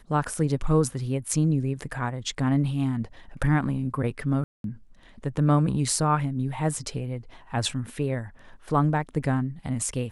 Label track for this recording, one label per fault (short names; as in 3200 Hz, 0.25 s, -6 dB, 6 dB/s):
4.440000	4.640000	gap 0.202 s